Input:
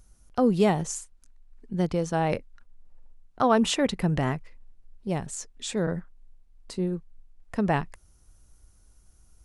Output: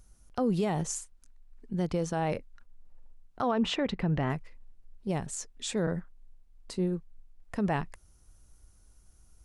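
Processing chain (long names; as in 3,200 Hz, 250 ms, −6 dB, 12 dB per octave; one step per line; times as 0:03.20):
0:03.51–0:04.30: low-pass filter 3,500 Hz 12 dB per octave
brickwall limiter −18 dBFS, peak gain reduction 9 dB
level −1.5 dB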